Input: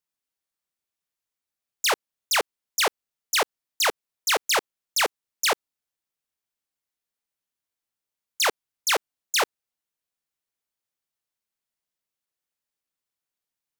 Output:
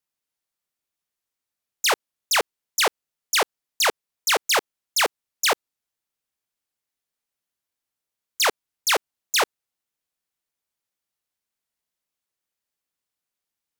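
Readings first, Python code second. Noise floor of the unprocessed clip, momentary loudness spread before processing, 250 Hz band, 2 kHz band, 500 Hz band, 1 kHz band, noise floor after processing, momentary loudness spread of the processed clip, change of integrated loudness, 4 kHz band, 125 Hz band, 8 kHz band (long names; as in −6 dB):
below −85 dBFS, 5 LU, +2.0 dB, +2.0 dB, +2.0 dB, +2.0 dB, below −85 dBFS, 5 LU, +2.0 dB, +2.0 dB, can't be measured, +2.0 dB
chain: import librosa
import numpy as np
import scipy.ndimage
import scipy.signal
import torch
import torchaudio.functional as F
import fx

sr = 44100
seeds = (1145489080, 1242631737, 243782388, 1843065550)

y = fx.vibrato(x, sr, rate_hz=2.2, depth_cents=12.0)
y = y * librosa.db_to_amplitude(2.0)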